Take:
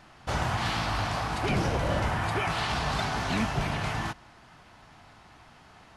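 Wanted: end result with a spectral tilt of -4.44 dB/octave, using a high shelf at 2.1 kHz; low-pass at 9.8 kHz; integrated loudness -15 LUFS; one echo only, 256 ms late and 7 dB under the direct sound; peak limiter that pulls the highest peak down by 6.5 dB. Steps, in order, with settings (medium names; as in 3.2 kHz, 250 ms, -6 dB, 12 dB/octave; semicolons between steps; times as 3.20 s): low-pass 9.8 kHz; treble shelf 2.1 kHz +3 dB; peak limiter -21.5 dBFS; delay 256 ms -7 dB; trim +15 dB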